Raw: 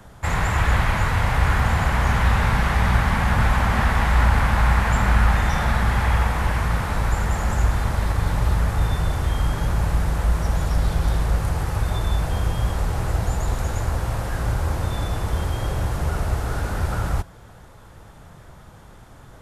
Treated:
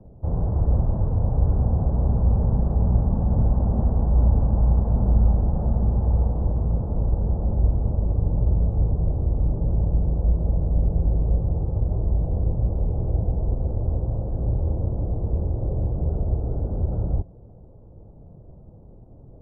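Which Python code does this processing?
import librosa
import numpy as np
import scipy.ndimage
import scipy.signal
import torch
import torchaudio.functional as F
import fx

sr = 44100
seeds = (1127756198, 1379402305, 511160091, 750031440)

y = scipy.signal.sosfilt(scipy.signal.cheby2(4, 70, 2600.0, 'lowpass', fs=sr, output='sos'), x)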